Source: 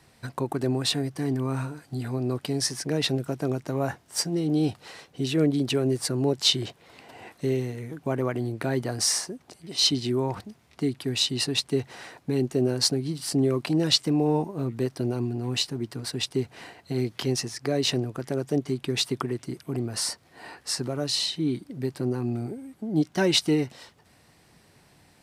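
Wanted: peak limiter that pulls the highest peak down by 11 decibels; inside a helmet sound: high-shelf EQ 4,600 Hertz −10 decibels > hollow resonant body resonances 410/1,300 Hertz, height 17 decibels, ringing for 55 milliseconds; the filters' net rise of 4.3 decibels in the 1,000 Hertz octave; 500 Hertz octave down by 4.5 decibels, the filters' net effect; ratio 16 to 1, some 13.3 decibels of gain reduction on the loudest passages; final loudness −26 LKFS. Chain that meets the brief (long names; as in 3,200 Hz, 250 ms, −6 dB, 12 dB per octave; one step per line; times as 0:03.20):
parametric band 500 Hz −8 dB
parametric band 1,000 Hz +9 dB
downward compressor 16 to 1, threshold −30 dBFS
brickwall limiter −26.5 dBFS
high-shelf EQ 4,600 Hz −10 dB
hollow resonant body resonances 410/1,300 Hz, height 17 dB, ringing for 55 ms
level +6.5 dB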